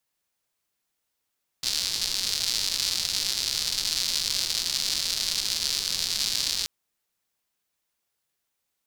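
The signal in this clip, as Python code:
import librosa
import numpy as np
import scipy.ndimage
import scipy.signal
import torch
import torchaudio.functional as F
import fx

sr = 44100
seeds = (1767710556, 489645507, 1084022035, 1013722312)

y = fx.rain(sr, seeds[0], length_s=5.03, drops_per_s=220.0, hz=4500.0, bed_db=-17)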